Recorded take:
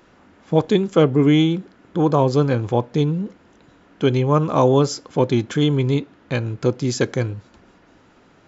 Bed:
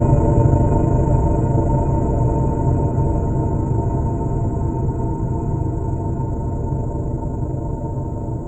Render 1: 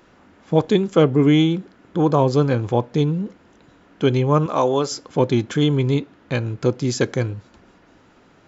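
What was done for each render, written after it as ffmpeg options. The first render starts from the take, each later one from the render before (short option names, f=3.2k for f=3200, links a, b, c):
-filter_complex "[0:a]asettb=1/sr,asplit=3[a][b][c];[a]atrim=end=4.464[d];[b]atrim=start=4.46:end=4.92,asetpts=PTS-STARTPTS,afade=t=in:d=0.004:c=qsin,afade=t=out:st=0.456:d=0.004:c=qsin,highpass=f=470:p=1[e];[c]atrim=start=4.916[f];[d][e]acrossfade=d=0.004:c1=hsin:c2=qsin[g];[g][f]acrossfade=d=0.004:c1=qsin:c2=hsin"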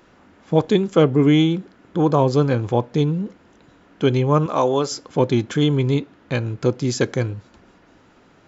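-af anull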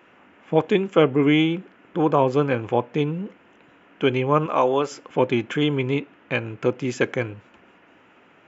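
-af "highpass=f=300:p=1,highshelf=f=3.4k:t=q:w=3:g=-7.5"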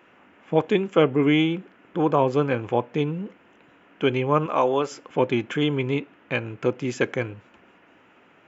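-af "volume=-1.5dB"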